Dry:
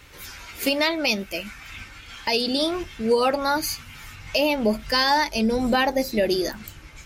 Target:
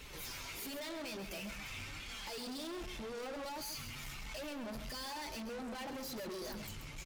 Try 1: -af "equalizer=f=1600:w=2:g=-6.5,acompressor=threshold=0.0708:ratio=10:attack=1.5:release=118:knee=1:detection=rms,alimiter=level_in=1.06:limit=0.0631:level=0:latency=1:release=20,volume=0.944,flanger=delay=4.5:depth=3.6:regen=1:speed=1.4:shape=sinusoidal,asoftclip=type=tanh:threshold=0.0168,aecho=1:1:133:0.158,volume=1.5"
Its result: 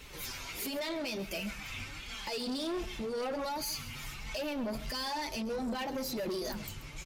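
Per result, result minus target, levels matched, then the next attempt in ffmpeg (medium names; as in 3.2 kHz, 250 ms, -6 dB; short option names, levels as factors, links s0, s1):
echo-to-direct -6.5 dB; saturation: distortion -6 dB
-af "equalizer=f=1600:w=2:g=-6.5,acompressor=threshold=0.0708:ratio=10:attack=1.5:release=118:knee=1:detection=rms,alimiter=level_in=1.06:limit=0.0631:level=0:latency=1:release=20,volume=0.944,flanger=delay=4.5:depth=3.6:regen=1:speed=1.4:shape=sinusoidal,asoftclip=type=tanh:threshold=0.0168,aecho=1:1:133:0.335,volume=1.5"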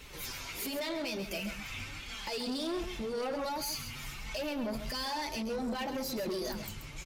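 saturation: distortion -6 dB
-af "equalizer=f=1600:w=2:g=-6.5,acompressor=threshold=0.0708:ratio=10:attack=1.5:release=118:knee=1:detection=rms,alimiter=level_in=1.06:limit=0.0631:level=0:latency=1:release=20,volume=0.944,flanger=delay=4.5:depth=3.6:regen=1:speed=1.4:shape=sinusoidal,asoftclip=type=tanh:threshold=0.00501,aecho=1:1:133:0.335,volume=1.5"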